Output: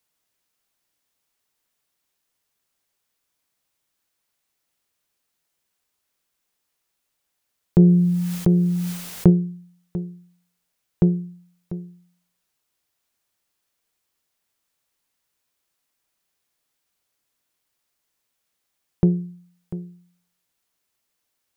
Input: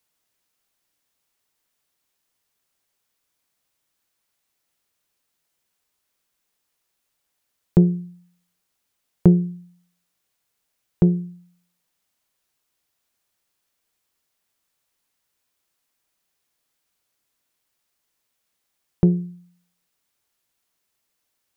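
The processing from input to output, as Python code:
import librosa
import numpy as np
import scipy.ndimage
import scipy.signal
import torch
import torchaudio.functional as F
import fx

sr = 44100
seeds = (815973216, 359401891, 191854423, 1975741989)

p1 = x + fx.echo_single(x, sr, ms=694, db=-14.0, dry=0)
p2 = fx.env_flatten(p1, sr, amount_pct=70, at=(7.79, 9.3))
y = p2 * 10.0 ** (-1.0 / 20.0)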